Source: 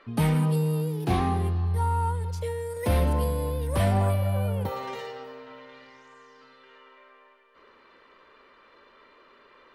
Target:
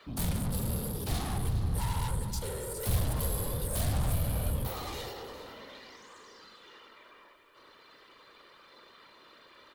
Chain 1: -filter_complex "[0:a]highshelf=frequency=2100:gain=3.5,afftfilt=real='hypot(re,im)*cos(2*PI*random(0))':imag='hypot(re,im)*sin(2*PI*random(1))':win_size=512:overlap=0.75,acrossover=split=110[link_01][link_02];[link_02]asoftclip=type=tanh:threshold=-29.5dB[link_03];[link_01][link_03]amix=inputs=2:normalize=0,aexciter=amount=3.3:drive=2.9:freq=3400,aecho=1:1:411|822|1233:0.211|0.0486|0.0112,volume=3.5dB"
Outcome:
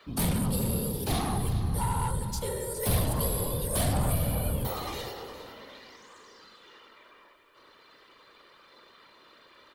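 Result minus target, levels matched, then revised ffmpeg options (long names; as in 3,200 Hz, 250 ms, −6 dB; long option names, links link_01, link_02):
soft clipping: distortion −8 dB
-filter_complex "[0:a]highshelf=frequency=2100:gain=3.5,afftfilt=real='hypot(re,im)*cos(2*PI*random(0))':imag='hypot(re,im)*sin(2*PI*random(1))':win_size=512:overlap=0.75,acrossover=split=110[link_01][link_02];[link_02]asoftclip=type=tanh:threshold=-40.5dB[link_03];[link_01][link_03]amix=inputs=2:normalize=0,aexciter=amount=3.3:drive=2.9:freq=3400,aecho=1:1:411|822|1233:0.211|0.0486|0.0112,volume=3.5dB"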